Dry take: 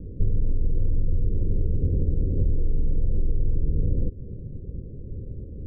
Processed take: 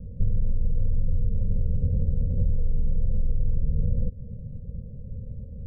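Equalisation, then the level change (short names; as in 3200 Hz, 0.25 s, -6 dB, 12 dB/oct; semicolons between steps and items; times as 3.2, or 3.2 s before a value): Chebyshev band-stop 220–510 Hz, order 2; 0.0 dB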